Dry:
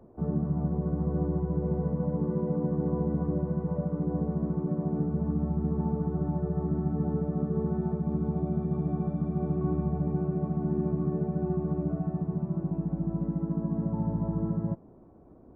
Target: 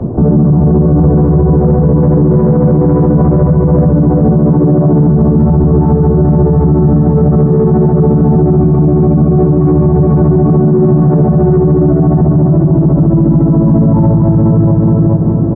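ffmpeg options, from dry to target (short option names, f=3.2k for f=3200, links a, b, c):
-filter_complex "[0:a]acrossover=split=270|410[a][b][c];[a]acompressor=threshold=-37dB:ratio=6[d];[d][b][c]amix=inputs=3:normalize=0,asoftclip=type=tanh:threshold=-28dB,lowpass=f=1.1k:p=1,equalizer=f=130:t=o:w=1.9:g=12.5,asplit=2[e][f];[f]aecho=0:1:420|840|1260|1680|2100:0.531|0.212|0.0849|0.034|0.0136[g];[e][g]amix=inputs=2:normalize=0,alimiter=level_in=31.5dB:limit=-1dB:release=50:level=0:latency=1,volume=-1dB"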